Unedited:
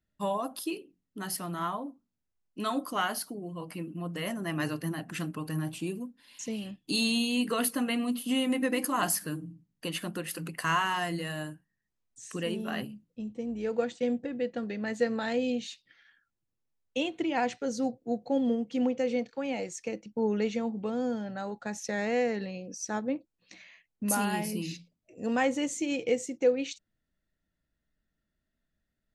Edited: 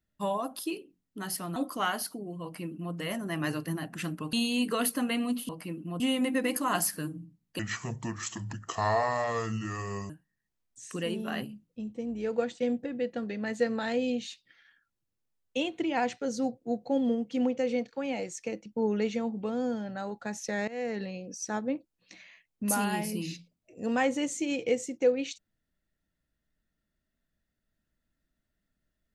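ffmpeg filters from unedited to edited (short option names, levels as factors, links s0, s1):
-filter_complex "[0:a]asplit=8[s0][s1][s2][s3][s4][s5][s6][s7];[s0]atrim=end=1.562[s8];[s1]atrim=start=2.718:end=5.492[s9];[s2]atrim=start=7.118:end=8.282[s10];[s3]atrim=start=3.588:end=4.102[s11];[s4]atrim=start=8.278:end=9.874[s12];[s5]atrim=start=9.87:end=11.5,asetpts=PTS-STARTPTS,asetrate=28665,aresample=44100,atrim=end_sample=110589,asetpts=PTS-STARTPTS[s13];[s6]atrim=start=11.496:end=22.08,asetpts=PTS-STARTPTS,afade=t=out:st=10.58:d=0.004:c=hsin:silence=0.112202[s14];[s7]atrim=start=22.08,asetpts=PTS-STARTPTS,afade=t=in:d=0.33:silence=0.112202[s15];[s8][s9]acrossfade=d=0.004:c1=hsin:c2=hsin[s16];[s16][s10]acrossfade=d=0.004:c1=hsin:c2=hsin[s17];[s17][s11]acrossfade=d=0.004:c1=hsin:c2=hsin[s18];[s18][s12]acrossfade=d=0.004:c1=hsin:c2=hsin[s19];[s19][s13]acrossfade=d=0.004:c1=hsin:c2=hsin[s20];[s14][s15]concat=n=2:v=0:a=1[s21];[s20][s21]acrossfade=d=0.004:c1=hsin:c2=hsin"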